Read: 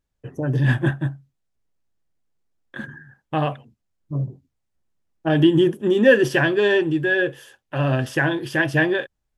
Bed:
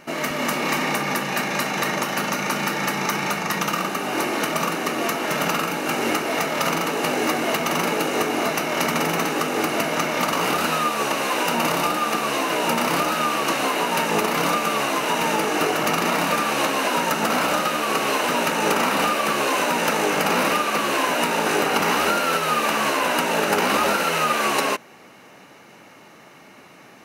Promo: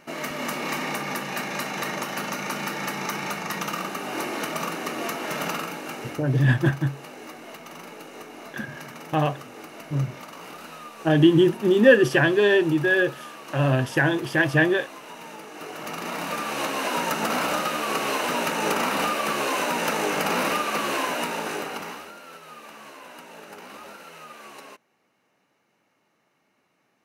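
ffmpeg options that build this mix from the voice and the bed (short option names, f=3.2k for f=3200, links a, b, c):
-filter_complex "[0:a]adelay=5800,volume=-0.5dB[a];[1:a]volume=9dB,afade=t=out:st=5.49:d=0.75:silence=0.223872,afade=t=in:st=15.54:d=1.48:silence=0.177828,afade=t=out:st=20.91:d=1.17:silence=0.11885[b];[a][b]amix=inputs=2:normalize=0"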